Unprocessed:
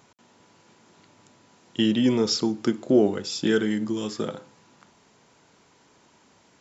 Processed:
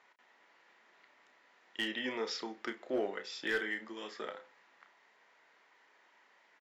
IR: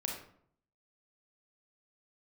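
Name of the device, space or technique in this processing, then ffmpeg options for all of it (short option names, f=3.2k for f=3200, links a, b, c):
megaphone: -filter_complex "[0:a]highpass=610,lowpass=3.4k,equalizer=f=1.9k:t=o:w=0.4:g=10.5,asoftclip=type=hard:threshold=-20dB,asplit=2[a][b];[b]adelay=31,volume=-9dB[c];[a][c]amix=inputs=2:normalize=0,volume=-7dB"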